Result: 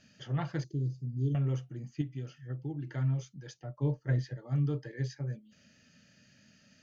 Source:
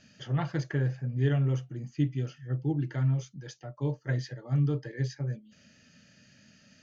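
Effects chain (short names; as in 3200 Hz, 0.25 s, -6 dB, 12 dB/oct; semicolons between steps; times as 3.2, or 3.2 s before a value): 0.64–1.35 Chebyshev band-stop 350–4500 Hz, order 3; 2.01–2.87 compressor 4:1, threshold -31 dBFS, peak gain reduction 8.5 dB; 3.54–4.37 tilt -1.5 dB/oct; gain -3.5 dB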